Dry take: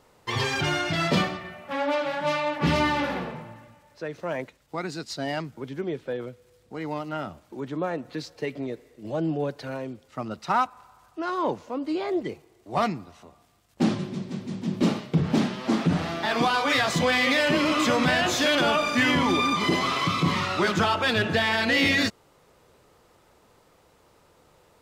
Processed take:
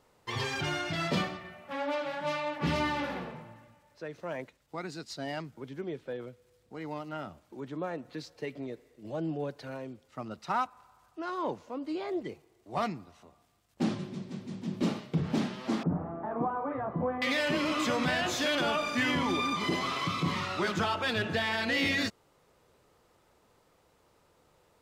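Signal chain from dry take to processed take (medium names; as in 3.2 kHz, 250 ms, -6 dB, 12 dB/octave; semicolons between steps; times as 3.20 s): 15.83–17.22 s: low-pass 1.1 kHz 24 dB/octave; trim -7 dB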